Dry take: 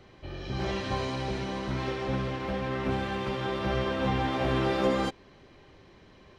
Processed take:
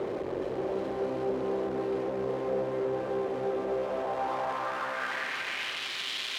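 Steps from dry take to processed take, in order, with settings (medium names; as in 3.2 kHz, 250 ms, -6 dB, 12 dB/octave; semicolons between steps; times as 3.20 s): one-bit comparator; band-pass sweep 460 Hz -> 3.4 kHz, 3.63–5.94 s; two-band feedback delay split 1.6 kHz, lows 256 ms, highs 367 ms, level -6 dB; trim +5.5 dB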